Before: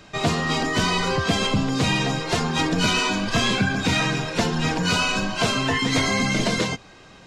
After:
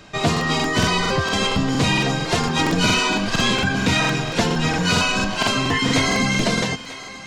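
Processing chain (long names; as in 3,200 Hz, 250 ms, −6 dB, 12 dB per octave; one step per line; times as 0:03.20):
feedback echo with a high-pass in the loop 940 ms, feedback 29%, high-pass 520 Hz, level −14.5 dB
regular buffer underruns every 0.23 s, samples 2,048, repeat, from 0:00.32
level +2.5 dB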